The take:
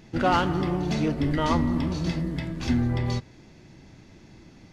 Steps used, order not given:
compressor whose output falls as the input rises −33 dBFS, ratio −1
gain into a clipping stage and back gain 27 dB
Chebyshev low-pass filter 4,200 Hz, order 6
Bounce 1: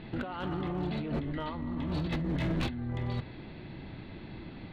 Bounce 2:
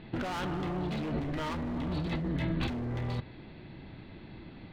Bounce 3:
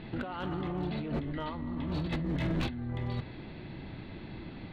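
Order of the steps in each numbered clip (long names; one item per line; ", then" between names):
Chebyshev low-pass filter, then compressor whose output falls as the input rises, then gain into a clipping stage and back
Chebyshev low-pass filter, then gain into a clipping stage and back, then compressor whose output falls as the input rises
compressor whose output falls as the input rises, then Chebyshev low-pass filter, then gain into a clipping stage and back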